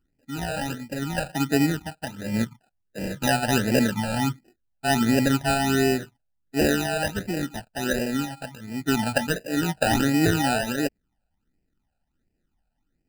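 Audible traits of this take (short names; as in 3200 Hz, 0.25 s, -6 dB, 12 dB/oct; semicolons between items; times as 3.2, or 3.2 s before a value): aliases and images of a low sample rate 1100 Hz, jitter 0%; phasing stages 12, 1.4 Hz, lowest notch 340–1200 Hz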